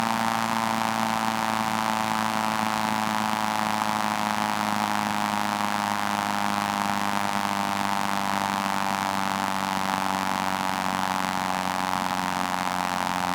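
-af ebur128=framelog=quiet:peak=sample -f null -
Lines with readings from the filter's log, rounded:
Integrated loudness:
  I:         -25.5 LUFS
  Threshold: -35.5 LUFS
Loudness range:
  LRA:         0.9 LU
  Threshold: -45.5 LUFS
  LRA low:   -26.0 LUFS
  LRA high:  -25.1 LUFS
Sample peak:
  Peak:       -6.8 dBFS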